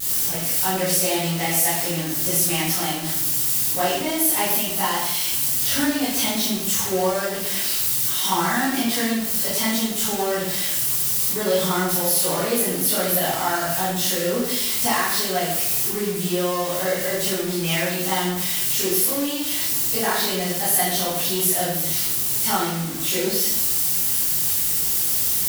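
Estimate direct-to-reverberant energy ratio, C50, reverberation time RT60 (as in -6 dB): -10.5 dB, 0.5 dB, 0.85 s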